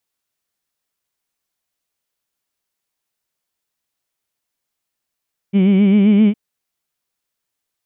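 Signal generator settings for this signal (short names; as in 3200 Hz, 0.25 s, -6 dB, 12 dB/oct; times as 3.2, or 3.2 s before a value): formant-synthesis vowel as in heed, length 0.81 s, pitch 190 Hz, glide +2 st, vibrato 7.6 Hz, vibrato depth 0.85 st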